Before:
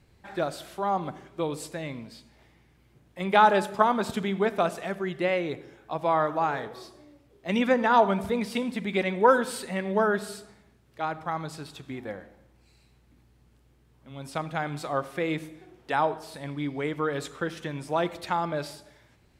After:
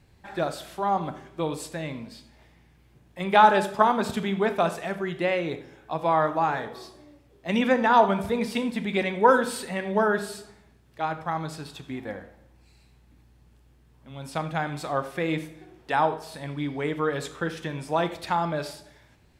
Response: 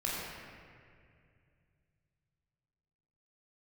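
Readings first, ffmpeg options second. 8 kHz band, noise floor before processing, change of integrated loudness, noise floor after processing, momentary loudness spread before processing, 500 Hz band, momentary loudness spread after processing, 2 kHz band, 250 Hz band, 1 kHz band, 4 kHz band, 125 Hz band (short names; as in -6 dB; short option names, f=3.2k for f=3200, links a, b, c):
+1.5 dB, -62 dBFS, +1.5 dB, -58 dBFS, 18 LU, +1.0 dB, 17 LU, +2.0 dB, +1.5 dB, +2.5 dB, +2.0 dB, +2.0 dB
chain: -filter_complex "[0:a]asplit=2[a][b];[1:a]atrim=start_sample=2205,atrim=end_sample=6174,asetrate=61740,aresample=44100[c];[b][c]afir=irnorm=-1:irlink=0,volume=-8.5dB[d];[a][d]amix=inputs=2:normalize=0"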